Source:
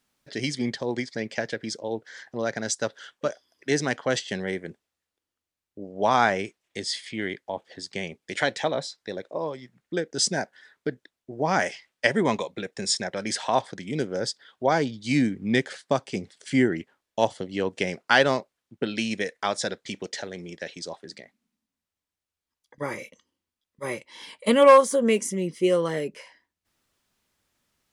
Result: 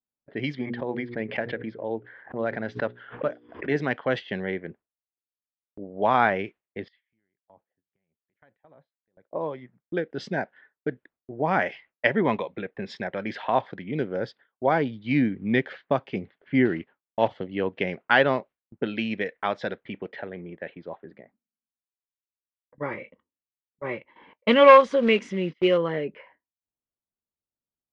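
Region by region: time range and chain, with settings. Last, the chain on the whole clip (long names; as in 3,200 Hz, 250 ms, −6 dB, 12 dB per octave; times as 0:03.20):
0:00.59–0:03.76: high-shelf EQ 4,500 Hz −11 dB + mains-hum notches 60/120/180/240/300/360/420/480 Hz + background raised ahead of every attack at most 120 dB per second
0:06.88–0:09.33: guitar amp tone stack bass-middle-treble 5-5-5 + downward compressor 8 to 1, threshold −46 dBFS
0:16.65–0:17.31: one scale factor per block 5 bits + low-pass filter 6,400 Hz 24 dB per octave
0:24.33–0:25.78: one scale factor per block 5 bits + noise gate −39 dBFS, range −21 dB + high-shelf EQ 2,100 Hz +11 dB
whole clip: low-pass that shuts in the quiet parts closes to 840 Hz, open at −22 dBFS; low-pass filter 3,000 Hz 24 dB per octave; noise gate with hold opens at −44 dBFS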